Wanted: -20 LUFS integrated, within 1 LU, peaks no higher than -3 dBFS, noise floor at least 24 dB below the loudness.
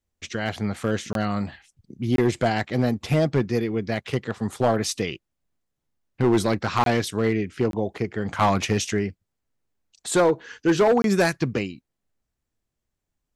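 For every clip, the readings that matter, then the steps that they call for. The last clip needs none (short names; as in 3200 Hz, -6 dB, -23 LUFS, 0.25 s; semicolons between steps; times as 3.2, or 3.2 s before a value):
clipped 1.0%; flat tops at -13.0 dBFS; dropouts 5; longest dropout 22 ms; loudness -24.0 LUFS; peak -13.0 dBFS; loudness target -20.0 LUFS
-> clip repair -13 dBFS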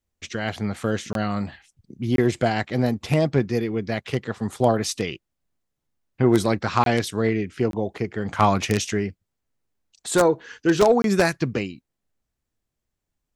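clipped 0.0%; dropouts 5; longest dropout 22 ms
-> interpolate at 1.13/2.16/6.84/7.71/11.02, 22 ms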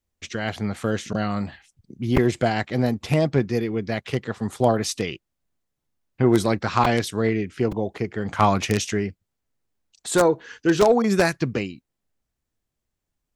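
dropouts 0; loudness -23.0 LUFS; peak -4.0 dBFS; loudness target -20.0 LUFS
-> gain +3 dB; limiter -3 dBFS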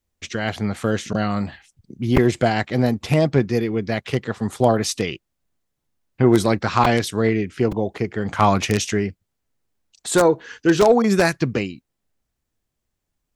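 loudness -20.5 LUFS; peak -3.0 dBFS; noise floor -79 dBFS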